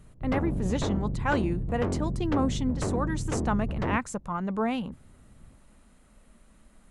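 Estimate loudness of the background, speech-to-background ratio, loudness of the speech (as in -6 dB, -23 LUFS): -31.5 LUFS, 0.5 dB, -31.0 LUFS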